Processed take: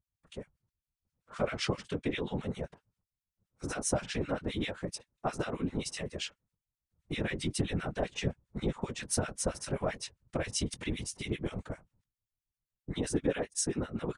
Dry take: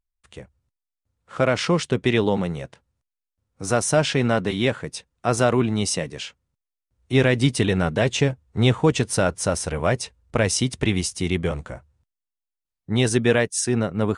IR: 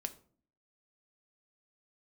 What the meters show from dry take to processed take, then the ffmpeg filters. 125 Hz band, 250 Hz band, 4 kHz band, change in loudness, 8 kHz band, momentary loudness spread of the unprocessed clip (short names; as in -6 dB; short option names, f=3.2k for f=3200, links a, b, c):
-14.5 dB, -12.5 dB, -12.0 dB, -13.5 dB, -10.0 dB, 13 LU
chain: -filter_complex "[0:a]acompressor=threshold=-23dB:ratio=6,asplit=2[a][b];[b]adelay=21,volume=-10.5dB[c];[a][c]amix=inputs=2:normalize=0,afftfilt=real='hypot(re,im)*cos(2*PI*random(0))':imag='hypot(re,im)*sin(2*PI*random(1))':win_size=512:overlap=0.75,acrossover=split=1300[d][e];[d]aeval=exprs='val(0)*(1-1/2+1/2*cos(2*PI*7.6*n/s))':c=same[f];[e]aeval=exprs='val(0)*(1-1/2-1/2*cos(2*PI*7.6*n/s))':c=same[g];[f][g]amix=inputs=2:normalize=0,volume=3.5dB"